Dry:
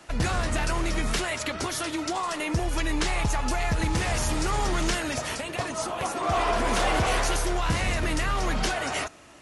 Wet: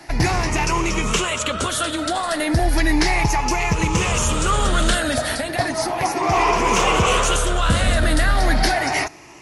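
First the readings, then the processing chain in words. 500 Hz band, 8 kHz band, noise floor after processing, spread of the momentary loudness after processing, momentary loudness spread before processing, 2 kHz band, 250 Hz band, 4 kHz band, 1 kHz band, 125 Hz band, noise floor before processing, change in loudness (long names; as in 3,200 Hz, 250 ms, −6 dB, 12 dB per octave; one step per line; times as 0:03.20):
+7.5 dB, +8.0 dB, −28 dBFS, 5 LU, 5 LU, +7.5 dB, +7.5 dB, +8.0 dB, +8.0 dB, +7.0 dB, −36 dBFS, +7.5 dB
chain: rippled gain that drifts along the octave scale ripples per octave 0.76, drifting +0.34 Hz, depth 10 dB
level +6.5 dB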